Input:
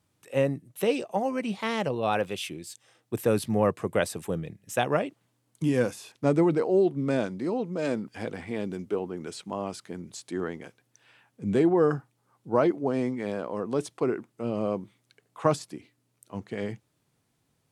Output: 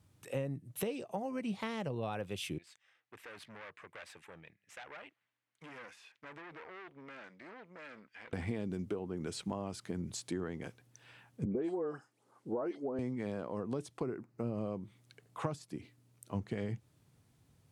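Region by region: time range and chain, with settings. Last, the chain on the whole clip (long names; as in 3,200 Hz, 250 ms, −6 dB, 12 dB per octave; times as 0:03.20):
0:02.58–0:08.33: tube saturation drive 29 dB, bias 0.7 + resonant band-pass 2,000 Hz, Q 1.7 + downward compressor 2 to 1, threshold −48 dBFS
0:11.45–0:12.99: Chebyshev band-pass filter 390–9,800 Hz + low-shelf EQ 460 Hz +5.5 dB + all-pass dispersion highs, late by 121 ms, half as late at 2,200 Hz
0:14.03–0:14.58: running median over 5 samples + parametric band 3,300 Hz −12.5 dB 0.42 octaves
whole clip: downward compressor 6 to 1, threshold −37 dBFS; parametric band 79 Hz +10 dB 2.3 octaves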